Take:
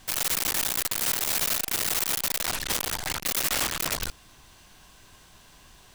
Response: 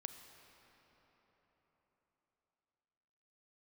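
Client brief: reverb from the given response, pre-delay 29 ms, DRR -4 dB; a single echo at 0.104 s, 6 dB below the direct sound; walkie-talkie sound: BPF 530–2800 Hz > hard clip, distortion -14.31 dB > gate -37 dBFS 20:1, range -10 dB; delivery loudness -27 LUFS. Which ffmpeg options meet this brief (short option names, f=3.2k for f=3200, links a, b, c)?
-filter_complex "[0:a]aecho=1:1:104:0.501,asplit=2[a][b];[1:a]atrim=start_sample=2205,adelay=29[c];[b][c]afir=irnorm=-1:irlink=0,volume=8dB[d];[a][d]amix=inputs=2:normalize=0,highpass=530,lowpass=2.8k,asoftclip=type=hard:threshold=-24.5dB,agate=range=-10dB:threshold=-37dB:ratio=20,volume=2dB"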